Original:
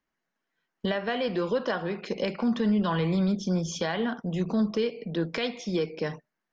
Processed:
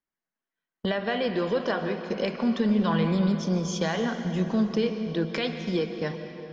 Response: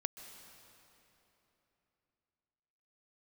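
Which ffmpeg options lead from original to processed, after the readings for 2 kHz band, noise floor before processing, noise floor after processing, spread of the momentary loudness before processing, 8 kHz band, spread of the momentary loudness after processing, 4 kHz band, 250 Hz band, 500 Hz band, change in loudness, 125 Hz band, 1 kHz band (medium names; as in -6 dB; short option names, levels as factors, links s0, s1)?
+1.5 dB, -84 dBFS, under -85 dBFS, 7 LU, no reading, 7 LU, +1.0 dB, +1.5 dB, +1.5 dB, +1.5 dB, +1.5 dB, +1.5 dB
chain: -filter_complex "[0:a]agate=range=0.282:threshold=0.0158:ratio=16:detection=peak[s0];[1:a]atrim=start_sample=2205[s1];[s0][s1]afir=irnorm=-1:irlink=0,volume=1.26"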